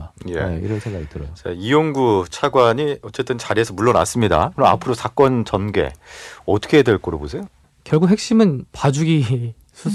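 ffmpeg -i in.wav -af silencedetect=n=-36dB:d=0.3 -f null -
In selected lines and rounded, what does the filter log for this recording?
silence_start: 7.46
silence_end: 7.86 | silence_duration: 0.40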